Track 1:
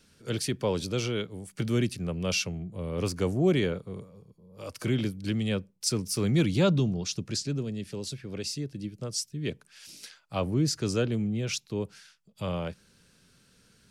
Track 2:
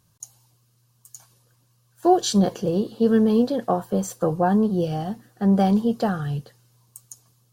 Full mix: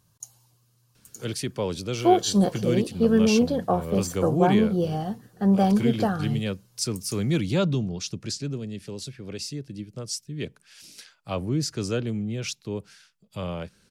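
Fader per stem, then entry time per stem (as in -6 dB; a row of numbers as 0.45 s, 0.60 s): 0.0 dB, -1.5 dB; 0.95 s, 0.00 s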